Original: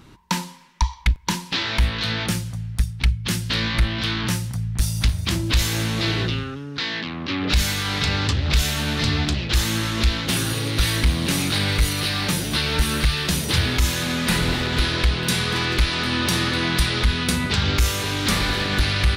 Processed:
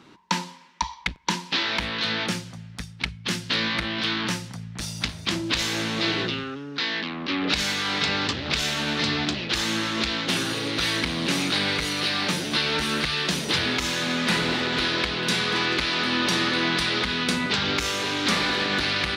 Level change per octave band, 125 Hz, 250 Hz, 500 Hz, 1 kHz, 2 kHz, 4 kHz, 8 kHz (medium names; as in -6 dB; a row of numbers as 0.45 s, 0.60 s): -11.5 dB, -2.5 dB, 0.0 dB, 0.0 dB, 0.0 dB, -0.5 dB, -5.0 dB